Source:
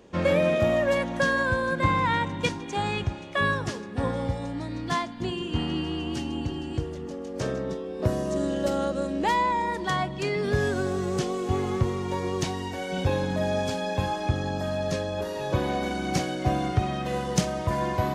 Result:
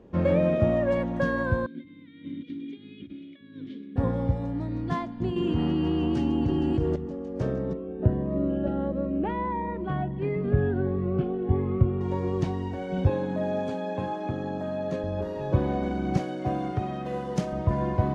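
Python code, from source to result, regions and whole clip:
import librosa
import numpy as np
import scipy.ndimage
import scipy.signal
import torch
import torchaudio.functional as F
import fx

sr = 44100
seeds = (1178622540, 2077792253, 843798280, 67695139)

y = fx.chain(x, sr, fx.peak_eq(hz=3700.0, db=14.0, octaves=0.54),
    fx.over_compress(threshold_db=-30.0, ratio=-1.0),
    fx.vowel_filter(vowel='i'), at=(1.66, 3.96))
y = fx.chain(y, sr, fx.low_shelf(hz=130.0, db=-7.5),
    fx.env_flatten(amount_pct=100), at=(5.36, 6.96))
y = fx.chain(y, sr, fx.lowpass(hz=2900.0, slope=24),
    fx.notch_cascade(direction='rising', hz=1.5), at=(7.73, 12.01))
y = fx.chain(y, sr, fx.highpass(hz=210.0, slope=12),
    fx.notch(hz=5200.0, q=7.6), at=(13.09, 15.04))
y = fx.chain(y, sr, fx.highpass(hz=300.0, slope=6),
    fx.high_shelf(hz=7900.0, db=7.0), at=(16.17, 17.53))
y = fx.lowpass(y, sr, hz=1200.0, slope=6)
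y = fx.low_shelf(y, sr, hz=410.0, db=7.5)
y = y * 10.0 ** (-3.0 / 20.0)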